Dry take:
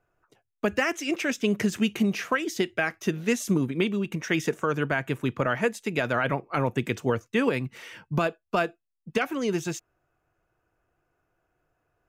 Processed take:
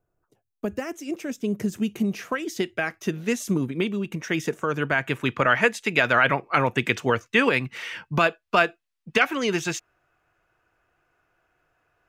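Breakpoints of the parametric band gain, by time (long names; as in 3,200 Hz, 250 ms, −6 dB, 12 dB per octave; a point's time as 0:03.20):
parametric band 2,300 Hz 3 octaves
0:01.56 −12.5 dB
0:02.64 −0.5 dB
0:04.58 −0.5 dB
0:05.26 +10 dB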